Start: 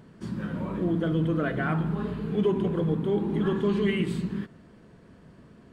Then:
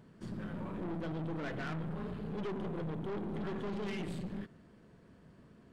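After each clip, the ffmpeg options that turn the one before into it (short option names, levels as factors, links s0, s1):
-af "aeval=exprs='(tanh(35.5*val(0)+0.5)-tanh(0.5))/35.5':c=same,volume=0.562"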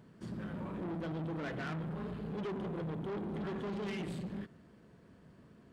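-af "highpass=44"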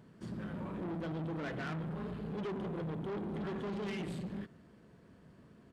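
-af "aresample=32000,aresample=44100"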